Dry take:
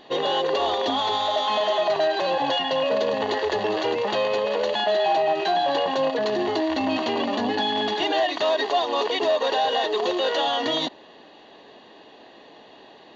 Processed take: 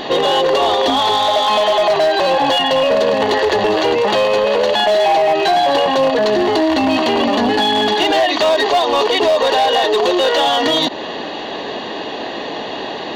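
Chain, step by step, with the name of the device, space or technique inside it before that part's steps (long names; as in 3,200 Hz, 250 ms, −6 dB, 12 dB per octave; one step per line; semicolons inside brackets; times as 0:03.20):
loud club master (downward compressor 1.5 to 1, threshold −31 dBFS, peak gain reduction 5 dB; hard clipping −22.5 dBFS, distortion −19 dB; boost into a limiter +31 dB)
level −8 dB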